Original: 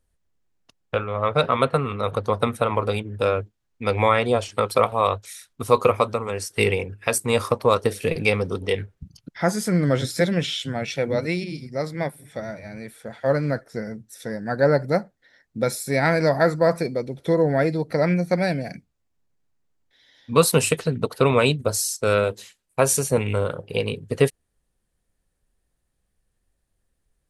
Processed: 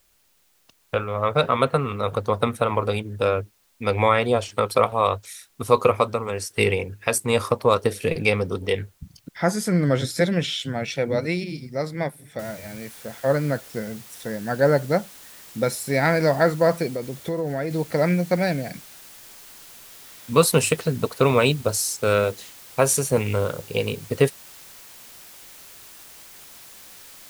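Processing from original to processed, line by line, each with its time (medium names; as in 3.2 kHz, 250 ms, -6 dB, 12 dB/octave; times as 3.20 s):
12.39 s: noise floor step -64 dB -45 dB
16.87–17.71 s: compression 3:1, threshold -24 dBFS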